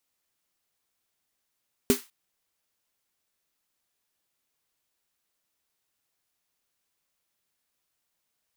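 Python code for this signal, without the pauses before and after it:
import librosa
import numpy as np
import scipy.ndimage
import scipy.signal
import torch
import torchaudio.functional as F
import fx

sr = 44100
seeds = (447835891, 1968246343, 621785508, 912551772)

y = fx.drum_snare(sr, seeds[0], length_s=0.2, hz=250.0, second_hz=400.0, noise_db=-8.0, noise_from_hz=1000.0, decay_s=0.13, noise_decay_s=0.28)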